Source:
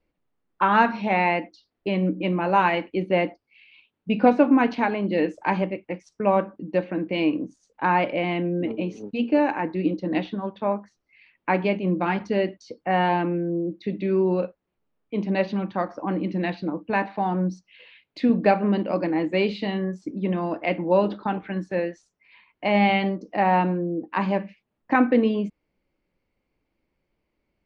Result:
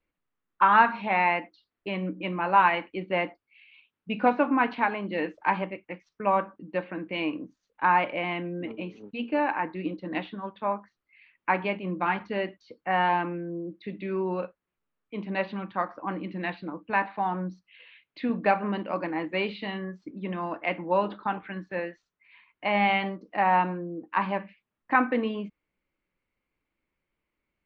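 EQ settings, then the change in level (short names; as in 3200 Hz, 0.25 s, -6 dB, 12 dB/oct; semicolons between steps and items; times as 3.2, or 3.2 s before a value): dynamic EQ 860 Hz, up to +6 dB, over -34 dBFS, Q 1.3; air absorption 160 m; band shelf 2100 Hz +8.5 dB 2.3 oct; -8.5 dB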